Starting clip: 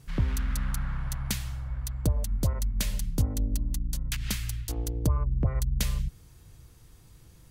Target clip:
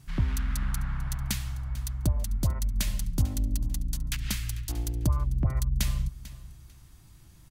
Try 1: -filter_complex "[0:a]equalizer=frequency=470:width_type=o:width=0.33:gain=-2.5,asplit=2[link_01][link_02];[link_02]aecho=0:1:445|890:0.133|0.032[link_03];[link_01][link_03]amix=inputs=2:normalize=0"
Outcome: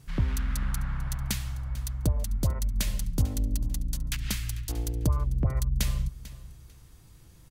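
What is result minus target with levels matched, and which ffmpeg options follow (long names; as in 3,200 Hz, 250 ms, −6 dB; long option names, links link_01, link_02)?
500 Hz band +3.5 dB
-filter_complex "[0:a]equalizer=frequency=470:width_type=o:width=0.33:gain=-13.5,asplit=2[link_01][link_02];[link_02]aecho=0:1:445|890:0.133|0.032[link_03];[link_01][link_03]amix=inputs=2:normalize=0"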